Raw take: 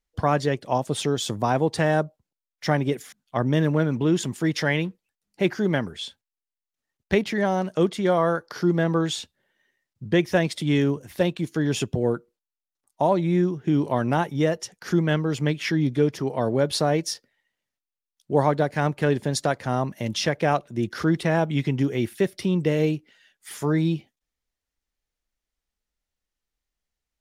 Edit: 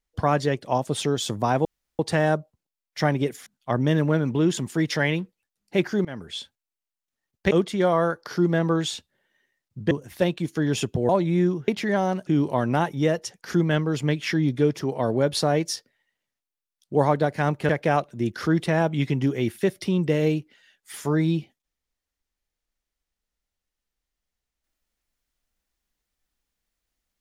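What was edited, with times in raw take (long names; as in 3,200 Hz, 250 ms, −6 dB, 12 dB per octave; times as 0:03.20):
0:01.65: splice in room tone 0.34 s
0:05.71–0:06.00: fade in, from −23.5 dB
0:07.17–0:07.76: move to 0:13.65
0:10.16–0:10.90: remove
0:12.08–0:13.06: remove
0:19.07–0:20.26: remove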